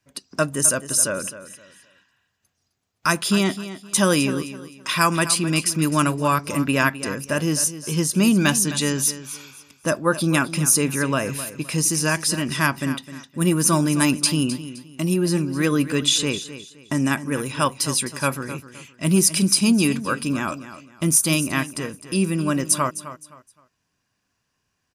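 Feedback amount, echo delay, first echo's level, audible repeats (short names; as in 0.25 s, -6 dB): 28%, 0.259 s, -13.5 dB, 2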